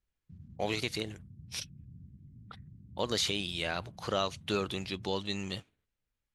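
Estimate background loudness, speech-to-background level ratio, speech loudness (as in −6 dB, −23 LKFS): −53.5 LKFS, 19.0 dB, −34.5 LKFS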